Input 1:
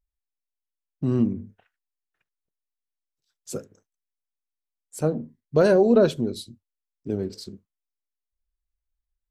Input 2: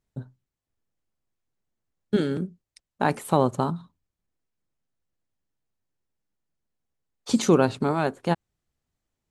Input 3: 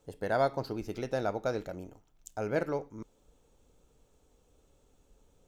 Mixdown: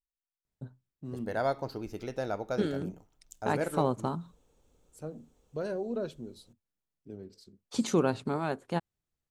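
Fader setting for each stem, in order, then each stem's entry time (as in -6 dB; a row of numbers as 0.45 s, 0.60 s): -17.0 dB, -7.5 dB, -2.0 dB; 0.00 s, 0.45 s, 1.05 s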